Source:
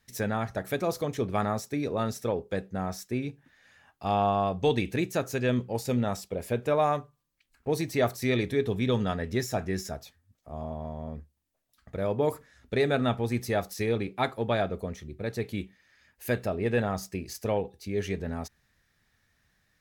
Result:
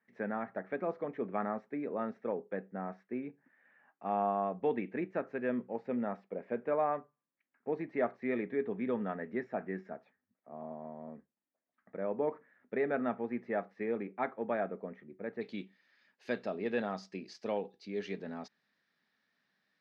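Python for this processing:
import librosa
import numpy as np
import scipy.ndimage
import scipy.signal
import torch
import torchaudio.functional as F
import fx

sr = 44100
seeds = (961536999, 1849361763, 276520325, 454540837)

y = fx.cheby1_bandpass(x, sr, low_hz=200.0, high_hz=fx.steps((0.0, 2000.0), (15.4, 4700.0)), order=3)
y = y * librosa.db_to_amplitude(-6.0)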